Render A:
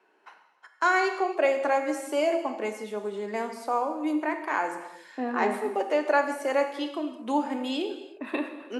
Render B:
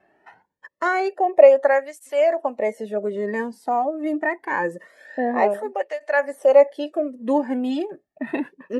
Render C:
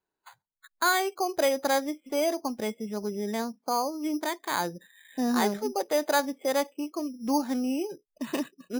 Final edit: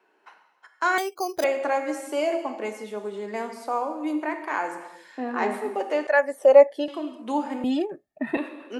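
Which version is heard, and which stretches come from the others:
A
0.98–1.44 from C
6.07–6.88 from B
7.64–8.37 from B

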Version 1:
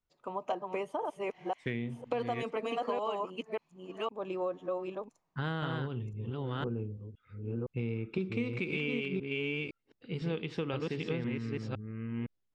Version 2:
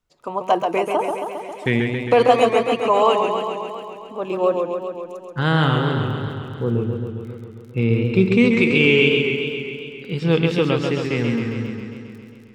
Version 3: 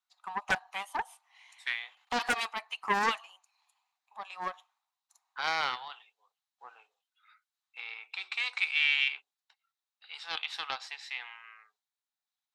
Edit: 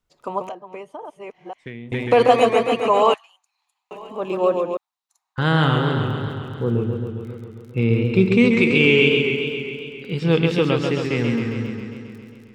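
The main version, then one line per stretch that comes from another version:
2
0.49–1.92 from 1
3.14–3.91 from 3
4.77–5.38 from 3

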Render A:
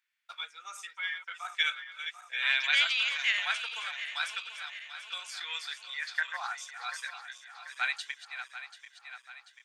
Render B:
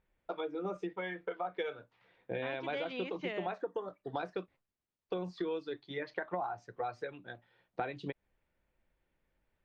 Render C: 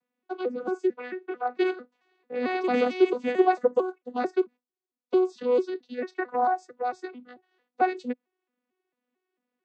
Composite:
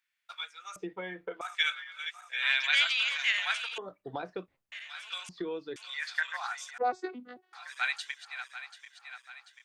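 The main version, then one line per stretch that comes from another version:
A
0.76–1.41 from B
3.78–4.72 from B
5.29–5.76 from B
6.78–7.53 from C

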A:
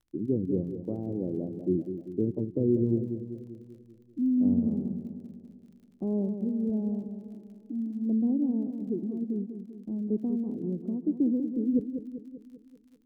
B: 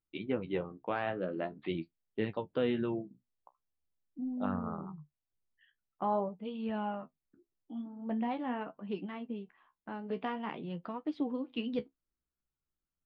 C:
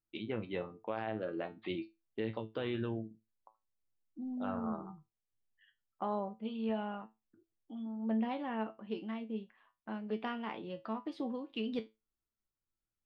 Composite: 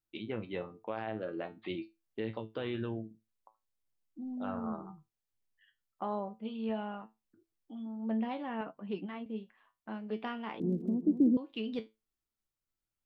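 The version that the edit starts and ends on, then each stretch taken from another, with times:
C
8.61–9.26 from B
10.6–11.37 from A

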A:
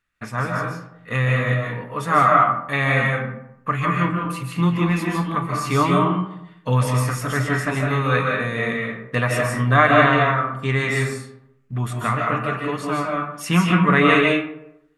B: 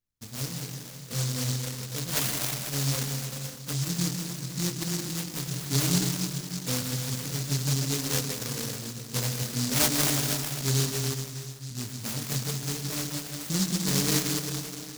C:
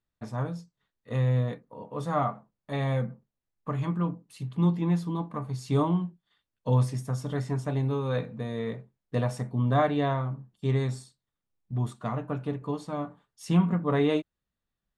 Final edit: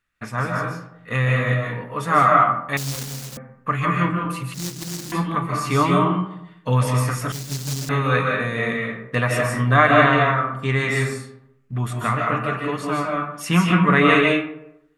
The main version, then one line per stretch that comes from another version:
A
2.77–3.37 from B
4.54–5.12 from B
7.32–7.89 from B
not used: C

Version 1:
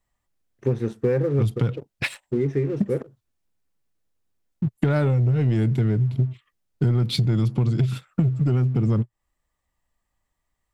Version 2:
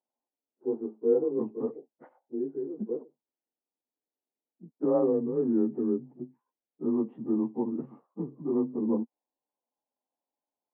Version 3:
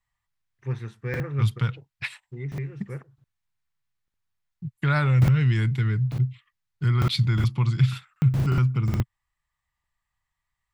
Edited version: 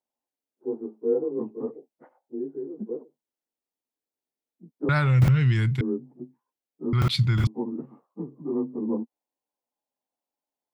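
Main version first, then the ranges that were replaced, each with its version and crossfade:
2
4.89–5.81 from 3
6.93–7.47 from 3
not used: 1

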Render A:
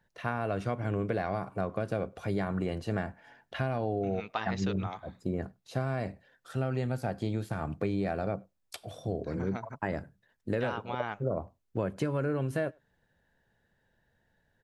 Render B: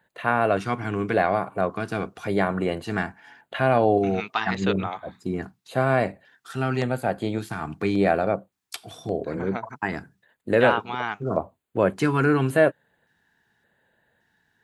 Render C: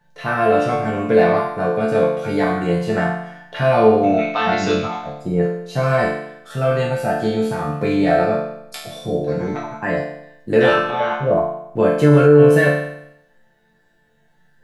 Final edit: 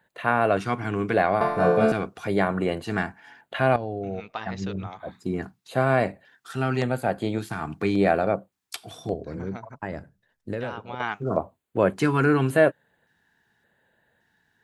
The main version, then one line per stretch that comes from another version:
B
1.41–1.92 from C
3.76–5 from A
9.14–11 from A

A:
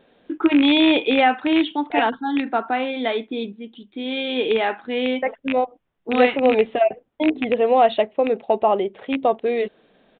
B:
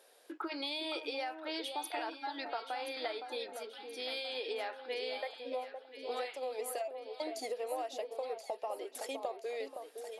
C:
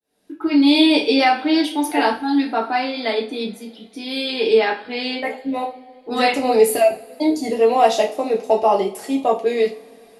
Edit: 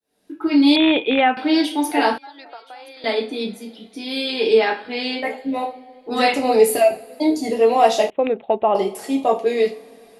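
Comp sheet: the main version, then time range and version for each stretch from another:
C
0.76–1.37 from A
2.18–3.04 from B
8.1–8.75 from A

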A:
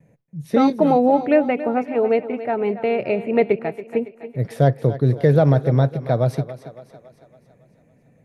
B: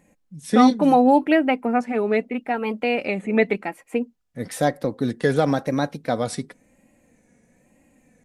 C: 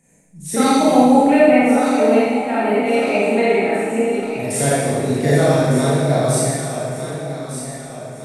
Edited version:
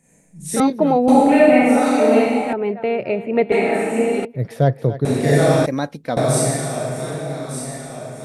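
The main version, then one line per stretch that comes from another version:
C
0.6–1.08 from A
2.53–3.52 from A
4.25–5.05 from A
5.66–6.17 from B

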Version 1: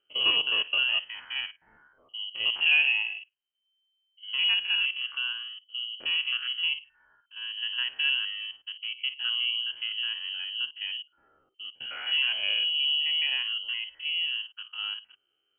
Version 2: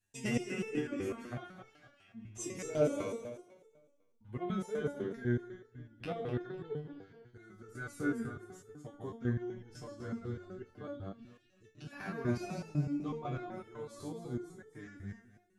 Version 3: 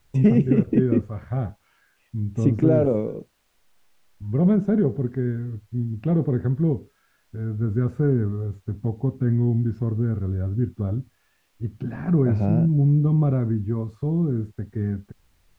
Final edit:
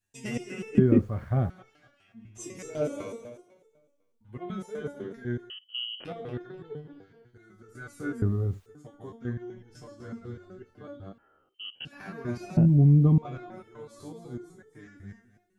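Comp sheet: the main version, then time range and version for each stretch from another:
2
0.78–1.5 from 3
5.5–6.05 from 1
8.22–8.66 from 3
11.18–11.85 from 1
12.57–13.18 from 3

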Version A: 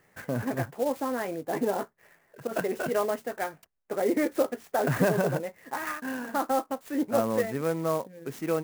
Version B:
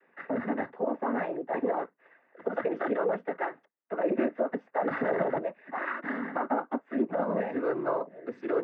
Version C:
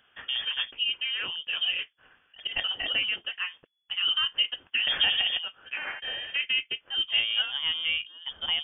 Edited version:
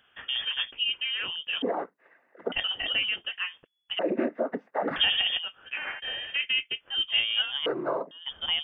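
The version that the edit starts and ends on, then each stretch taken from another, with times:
C
1.62–2.52 from B
3.99–4.96 from B
7.66–8.11 from B
not used: A

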